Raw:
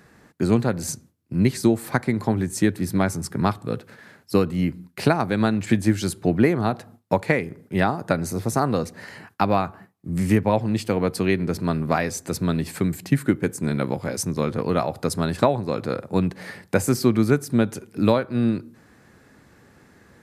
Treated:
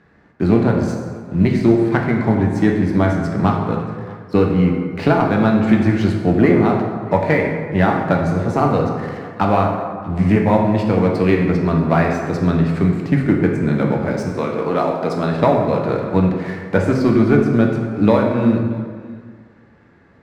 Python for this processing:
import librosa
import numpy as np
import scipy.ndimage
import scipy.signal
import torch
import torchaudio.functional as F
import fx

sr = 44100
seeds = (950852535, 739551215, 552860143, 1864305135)

y = scipy.signal.sosfilt(scipy.signal.butter(2, 2900.0, 'lowpass', fs=sr, output='sos'), x)
y = fx.leveller(y, sr, passes=1)
y = fx.highpass(y, sr, hz=fx.line((14.28, 350.0), (15.36, 170.0)), slope=12, at=(14.28, 15.36), fade=0.02)
y = y + 10.0 ** (-23.0 / 20.0) * np.pad(y, (int(630 * sr / 1000.0), 0))[:len(y)]
y = fx.rev_plate(y, sr, seeds[0], rt60_s=1.7, hf_ratio=0.55, predelay_ms=0, drr_db=0.0)